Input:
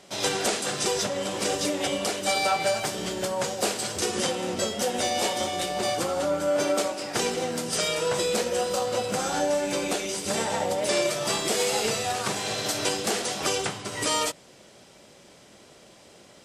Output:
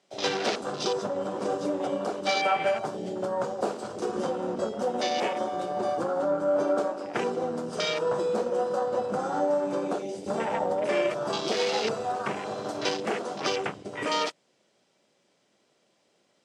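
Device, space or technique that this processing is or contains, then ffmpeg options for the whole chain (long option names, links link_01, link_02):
over-cleaned archive recording: -af "highpass=160,lowpass=7900,afwtdn=0.0282"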